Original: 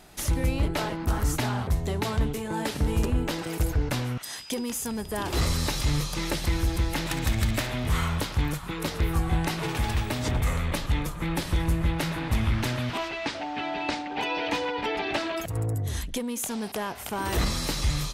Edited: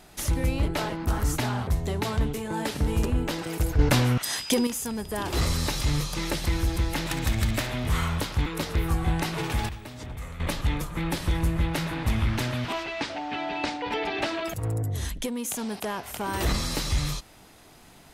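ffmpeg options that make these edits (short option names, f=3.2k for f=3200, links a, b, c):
-filter_complex "[0:a]asplit=7[a][b][c][d][e][f][g];[a]atrim=end=3.792[h];[b]atrim=start=3.788:end=4.672,asetpts=PTS-STARTPTS,volume=7.5dB[i];[c]atrim=start=4.668:end=8.462[j];[d]atrim=start=8.708:end=9.942[k];[e]atrim=start=9.938:end=10.652,asetpts=PTS-STARTPTS,volume=-11.5dB[l];[f]atrim=start=10.648:end=14.072[m];[g]atrim=start=14.738[n];[h][i]acrossfade=d=0.004:c1=hsin:c2=hsin[o];[o][j]acrossfade=d=0.004:c1=hsin:c2=hsin[p];[p][k]acrossfade=d=0.004:c1=hsin:c2=hsin[q];[q][l]acrossfade=d=0.004:c1=hsin:c2=hsin[r];[r][m]acrossfade=d=0.004:c1=hsin:c2=hsin[s];[s][n]acrossfade=d=0.004:c1=hsin:c2=hsin"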